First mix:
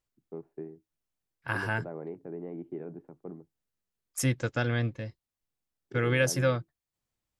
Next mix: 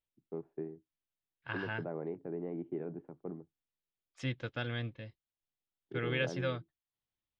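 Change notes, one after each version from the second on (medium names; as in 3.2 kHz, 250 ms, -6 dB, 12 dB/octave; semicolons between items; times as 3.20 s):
second voice: add four-pole ladder low-pass 4 kHz, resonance 50%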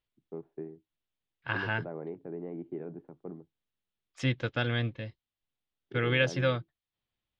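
second voice +7.5 dB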